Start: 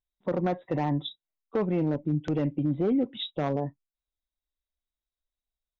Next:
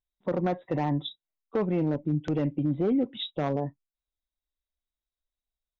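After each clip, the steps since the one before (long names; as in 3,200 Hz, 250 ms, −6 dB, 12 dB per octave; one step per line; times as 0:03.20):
no processing that can be heard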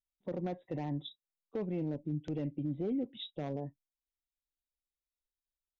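parametric band 1,200 Hz −10 dB 1.1 octaves
level −8.5 dB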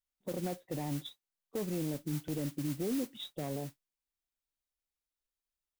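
noise that follows the level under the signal 13 dB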